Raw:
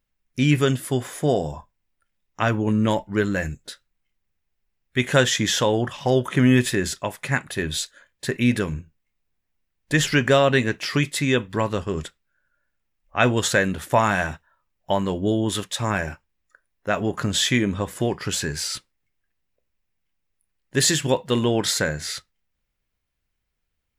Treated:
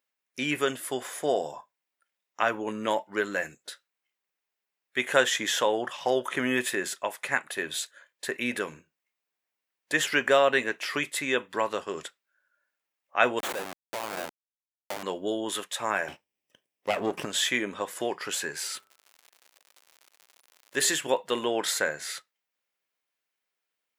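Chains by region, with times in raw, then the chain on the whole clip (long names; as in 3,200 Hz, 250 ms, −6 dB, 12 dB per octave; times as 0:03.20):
0:13.39–0:15.03: downward compressor 4 to 1, threshold −19 dBFS + comparator with hysteresis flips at −22.5 dBFS
0:16.08–0:17.25: lower of the sound and its delayed copy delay 0.37 ms + low-shelf EQ 370 Hz +10.5 dB
0:18.62–0:20.89: hum removal 101.3 Hz, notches 15 + surface crackle 130 per second −38 dBFS
whole clip: high-pass filter 480 Hz 12 dB per octave; dynamic equaliser 5,000 Hz, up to −7 dB, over −41 dBFS, Q 1.2; level −1.5 dB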